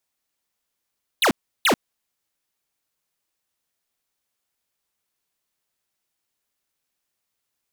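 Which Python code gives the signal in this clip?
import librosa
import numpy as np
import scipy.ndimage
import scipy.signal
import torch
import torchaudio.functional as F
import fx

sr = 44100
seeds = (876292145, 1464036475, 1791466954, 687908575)

y = fx.laser_zaps(sr, level_db=-17.0, start_hz=4300.0, end_hz=180.0, length_s=0.09, wave='square', shots=2, gap_s=0.34)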